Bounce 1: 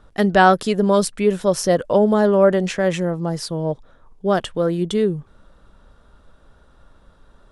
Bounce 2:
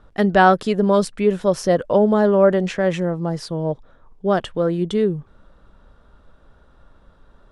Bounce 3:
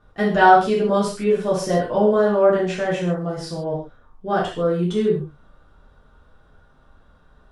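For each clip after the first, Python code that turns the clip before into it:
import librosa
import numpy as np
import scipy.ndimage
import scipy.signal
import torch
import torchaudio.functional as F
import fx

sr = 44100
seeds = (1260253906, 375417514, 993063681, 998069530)

y1 = fx.lowpass(x, sr, hz=3500.0, slope=6)
y2 = fx.rev_gated(y1, sr, seeds[0], gate_ms=180, shape='falling', drr_db=-7.5)
y2 = F.gain(torch.from_numpy(y2), -8.5).numpy()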